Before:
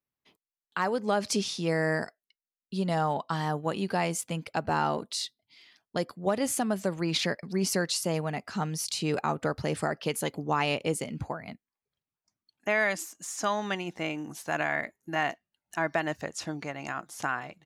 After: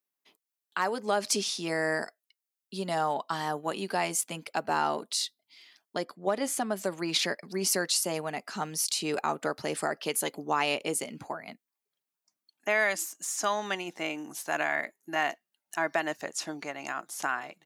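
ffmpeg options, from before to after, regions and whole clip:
ffmpeg -i in.wav -filter_complex "[0:a]asettb=1/sr,asplit=3[link_01][link_02][link_03];[link_01]atrim=end=5.974[link_04];[link_02]atrim=start=5.97:end=6.77,asetpts=PTS-STARTPTS,afade=type=in:duration=0.004:curve=qsin,afade=type=out:start_time=0.796:duration=0.004:curve=qsin,highshelf=frequency=6700:gain=-10,bandreject=frequency=2700:width=16[link_05];[link_03]atrim=start=6.766[link_06];[link_04][link_05]acrossfade=duration=0.004:curve1=hsin:curve2=qsin[link_07];[link_07][link_06]acrossfade=duration=0.004:curve1=qsin:curve2=hsin,highpass=280,highshelf=frequency=7100:gain=8,bandreject=frequency=500:width=12" out.wav

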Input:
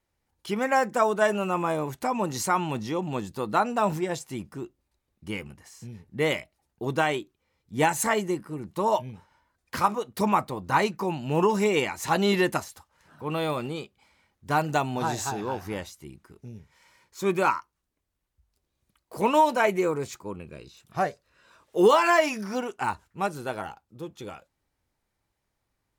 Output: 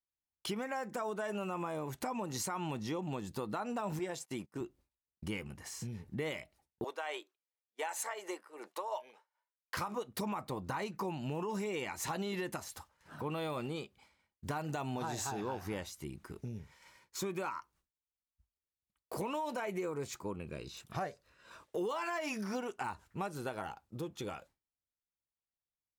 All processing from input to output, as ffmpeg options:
ffmpeg -i in.wav -filter_complex "[0:a]asettb=1/sr,asplit=3[link_01][link_02][link_03];[link_01]atrim=end=3.994[link_04];[link_02]atrim=start=3.99:end=4.61,asetpts=PTS-STARTPTS,afade=type=in:duration=0.004:curve=qsin,afade=type=out:start_time=0.616:duration=0.004:curve=qsin,highpass=frequency=240:poles=1,agate=range=-24dB:threshold=-47dB:ratio=16:release=100:detection=peak[link_05];[link_03]atrim=start=4.606[link_06];[link_04][link_05]acrossfade=duration=0.004:curve1=hsin:curve2=qsin[link_07];[link_07][link_06]acrossfade=duration=0.004:curve1=qsin:curve2=hsin,asettb=1/sr,asplit=3[link_08][link_09][link_10];[link_08]atrim=end=6.844[link_11];[link_09]atrim=start=6.84:end=9.77,asetpts=PTS-STARTPTS,afade=type=in:duration=0.004:curve=qsin,afade=type=out:start_time=2.926:duration=0.004:curve=qsin,highpass=frequency=490:width=0.5412,highpass=frequency=490:width=1.3066,tremolo=f=2.7:d=0.76,highshelf=frequency=7100:gain=-5.5[link_12];[link_10]atrim=start=9.766[link_13];[link_11][link_12]acrossfade=duration=0.004:curve1=hsin:curve2=qsin[link_14];[link_14][link_13]acrossfade=duration=0.004:curve1=qsin:curve2=hsin,agate=range=-33dB:threshold=-53dB:ratio=3:detection=peak,alimiter=limit=-20.5dB:level=0:latency=1:release=117,acompressor=threshold=-48dB:ratio=2.5,volume=6dB" out.wav

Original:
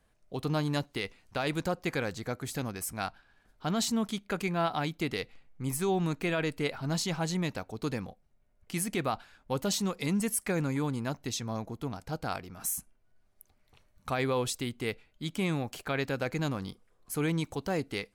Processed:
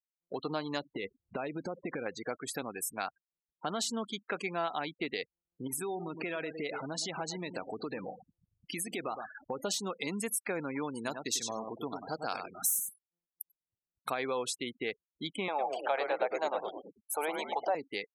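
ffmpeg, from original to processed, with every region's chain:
ffmpeg -i in.wav -filter_complex "[0:a]asettb=1/sr,asplit=3[link_01][link_02][link_03];[link_01]atrim=end=0.854[link_04];[link_02]atrim=start=0.85:end=2.06,asetpts=PTS-STARTPTS,afade=type=in:duration=0.004:curve=qsin,afade=type=out:start_time=1.206:duration=0.004:curve=qsin,lowshelf=frequency=480:gain=11,acompressor=threshold=-29dB:ratio=20:attack=3.2:release=140:knee=1:detection=peak[link_05];[link_03]atrim=start=2.056[link_06];[link_04][link_05]acrossfade=duration=0.004:curve1=hsin:curve2=qsin[link_07];[link_07][link_06]acrossfade=duration=0.004:curve1=qsin:curve2=hsin,asettb=1/sr,asplit=3[link_08][link_09][link_10];[link_08]atrim=end=5.674[link_11];[link_09]atrim=start=5.67:end=9.61,asetpts=PTS-STARTPTS,afade=type=in:duration=0.004:curve=qsin,afade=type=out:start_time=3.936:duration=0.004:curve=qsin,aeval=exprs='val(0)+0.5*0.00562*sgn(val(0))':channel_layout=same,asplit=2[link_12][link_13];[link_13]adelay=111,lowpass=frequency=1300:poles=1,volume=-12.5dB,asplit=2[link_14][link_15];[link_15]adelay=111,lowpass=frequency=1300:poles=1,volume=0.15[link_16];[link_12][link_14][link_16]amix=inputs=3:normalize=0,atrim=end_sample=173754,acompressor=threshold=-30dB:ratio=8:attack=3.2:release=140:knee=1:detection=peak[link_17];[link_10]atrim=start=9.606[link_18];[link_11][link_17]acrossfade=duration=0.004:curve1=hsin:curve2=qsin[link_19];[link_19][link_18]acrossfade=duration=0.004:curve1=qsin:curve2=hsin,asettb=1/sr,asplit=3[link_20][link_21][link_22];[link_20]atrim=end=10.954[link_23];[link_21]atrim=start=10.95:end=14.15,asetpts=PTS-STARTPTS,afade=type=in:duration=0.004:curve=qsin,afade=type=out:start_time=3.196:duration=0.004:curve=qsin,highshelf=frequency=5000:gain=10,aecho=1:1:95|190|285:0.447|0.0715|0.0114,atrim=end_sample=141120[link_24];[link_22]atrim=start=14.146[link_25];[link_23][link_24]acrossfade=duration=0.004:curve1=hsin:curve2=qsin[link_26];[link_26][link_25]acrossfade=duration=0.004:curve1=qsin:curve2=hsin,asettb=1/sr,asplit=3[link_27][link_28][link_29];[link_27]atrim=end=15.484[link_30];[link_28]atrim=start=15.48:end=17.75,asetpts=PTS-STARTPTS,afade=type=in:duration=0.004:curve=qsin,afade=type=out:start_time=2.266:duration=0.004:curve=qsin,highpass=frequency=610:width_type=q:width=3.7,equalizer=frequency=860:width=6:gain=12,asplit=6[link_31][link_32][link_33][link_34][link_35][link_36];[link_32]adelay=107,afreqshift=-110,volume=-6dB[link_37];[link_33]adelay=214,afreqshift=-220,volume=-13.5dB[link_38];[link_34]adelay=321,afreqshift=-330,volume=-21.1dB[link_39];[link_35]adelay=428,afreqshift=-440,volume=-28.6dB[link_40];[link_36]adelay=535,afreqshift=-550,volume=-36.1dB[link_41];[link_31][link_37][link_38][link_39][link_40][link_41]amix=inputs=6:normalize=0,atrim=end_sample=100107[link_42];[link_29]atrim=start=17.746[link_43];[link_30][link_42]acrossfade=duration=0.004:curve1=hsin:curve2=qsin[link_44];[link_44][link_43]acrossfade=duration=0.004:curve1=qsin:curve2=hsin,afftfilt=real='re*gte(hypot(re,im),0.0112)':imag='im*gte(hypot(re,im),0.0112)':win_size=1024:overlap=0.75,highpass=340,acompressor=threshold=-47dB:ratio=2,volume=8dB" out.wav

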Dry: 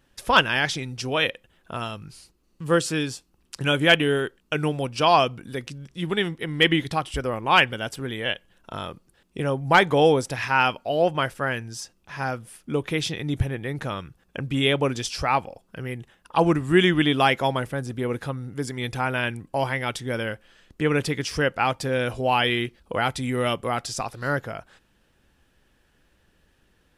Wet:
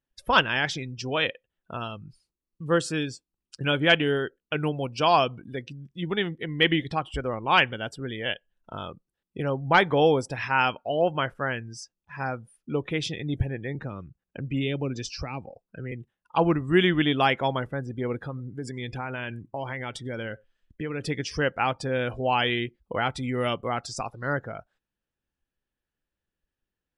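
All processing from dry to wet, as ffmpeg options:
ffmpeg -i in.wav -filter_complex "[0:a]asettb=1/sr,asplit=3[link_01][link_02][link_03];[link_01]atrim=end=13.754[link_04];[link_02]atrim=start=13.75:end=15.92,asetpts=PTS-STARTPTS,afade=type=in:duration=0.004:curve=qsin,afade=type=out:start_time=2.166:duration=0.004:curve=qsin,lowpass=7600,bandreject=frequency=3300:width=6.7,acrossover=split=380|3000[link_05][link_06][link_07];[link_06]acompressor=threshold=-34dB:ratio=6:attack=3.2:release=140:knee=2.83:detection=peak[link_08];[link_05][link_08][link_07]amix=inputs=3:normalize=0[link_09];[link_03]atrim=start=15.916[link_10];[link_04][link_09]acrossfade=duration=0.004:curve1=hsin:curve2=qsin[link_11];[link_11][link_10]acrossfade=duration=0.004:curve1=qsin:curve2=hsin,asettb=1/sr,asplit=3[link_12][link_13][link_14];[link_12]atrim=end=18.214[link_15];[link_13]atrim=start=18.21:end=21.07,asetpts=PTS-STARTPTS,afade=type=in:duration=0.004:curve=qsin,afade=type=out:start_time=2.856:duration=0.004:curve=qsin,acompressor=threshold=-26dB:ratio=4:attack=3.2:release=140:knee=1:detection=peak,aecho=1:1:96:0.0841,atrim=end_sample=126126[link_16];[link_14]atrim=start=21.066[link_17];[link_15][link_16]acrossfade=duration=0.004:curve1=hsin:curve2=qsin[link_18];[link_18][link_17]acrossfade=duration=0.004:curve1=qsin:curve2=hsin,afftdn=noise_reduction=22:noise_floor=-39,highshelf=frequency=7700:gain=-3.5,volume=-2.5dB" out.wav

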